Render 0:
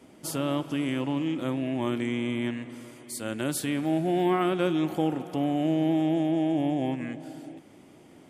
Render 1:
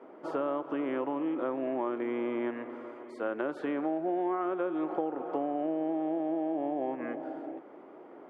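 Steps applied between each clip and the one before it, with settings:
Chebyshev band-pass filter 400–1,300 Hz, order 2
downward compressor 6 to 1, threshold −36 dBFS, peak gain reduction 12.5 dB
level +7.5 dB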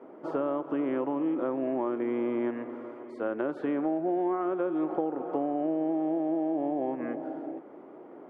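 spectral tilt −2 dB per octave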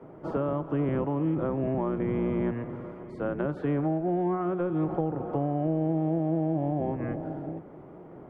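sub-octave generator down 1 octave, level +1 dB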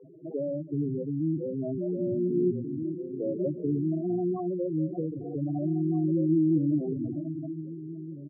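spectral peaks only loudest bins 4
slap from a distant wall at 270 metres, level −11 dB
auto-filter low-pass sine 0.26 Hz 340–2,600 Hz

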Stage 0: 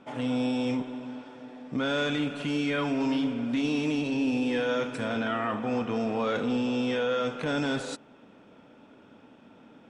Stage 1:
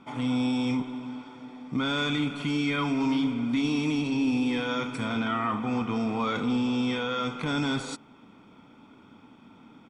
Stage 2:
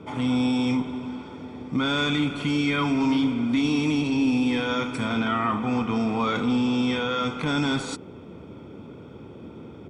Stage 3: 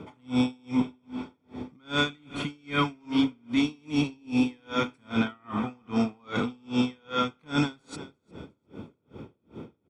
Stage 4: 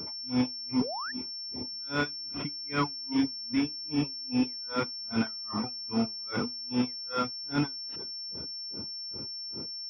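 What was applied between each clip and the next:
comb filter 0.9 ms, depth 59%
noise in a band 72–450 Hz −46 dBFS; level +3.5 dB
repeating echo 353 ms, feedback 38%, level −19 dB; tremolo with a sine in dB 2.5 Hz, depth 37 dB; level +2 dB
sound drawn into the spectrogram rise, 0:00.81–0:01.12, 390–1,900 Hz −34 dBFS; reverb reduction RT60 1.6 s; switching amplifier with a slow clock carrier 5,400 Hz; level −2.5 dB

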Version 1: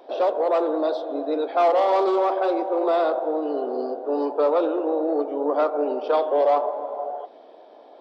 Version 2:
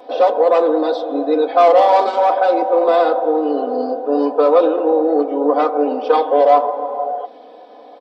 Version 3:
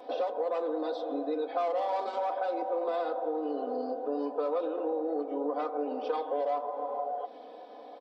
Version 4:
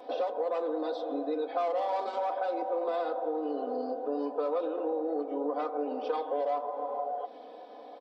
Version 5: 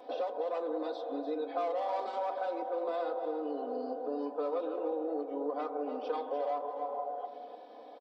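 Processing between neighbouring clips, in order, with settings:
comb filter 4 ms, depth 92%; level +5 dB
downward compressor 3 to 1, threshold −25 dBFS, peak gain reduction 13.5 dB; level −7 dB
no processing that can be heard
single-tap delay 296 ms −10.5 dB; level −3.5 dB

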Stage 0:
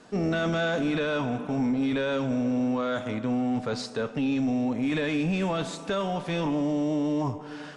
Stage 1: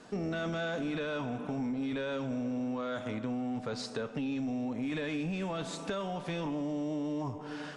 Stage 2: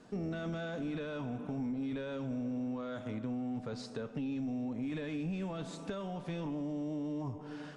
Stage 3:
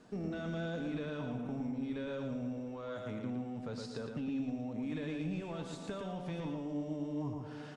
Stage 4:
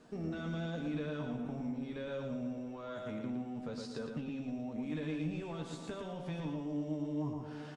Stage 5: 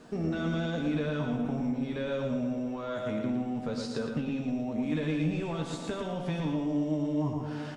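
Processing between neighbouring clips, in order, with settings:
downward compressor 3 to 1, threshold −33 dBFS, peak gain reduction 8 dB; level −1 dB
low-shelf EQ 400 Hz +8 dB; level −8 dB
repeating echo 114 ms, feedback 31%, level −4.5 dB; level −2 dB
double-tracking delay 13 ms −7 dB; level −1 dB
convolution reverb RT60 0.95 s, pre-delay 15 ms, DRR 11 dB; level +8 dB

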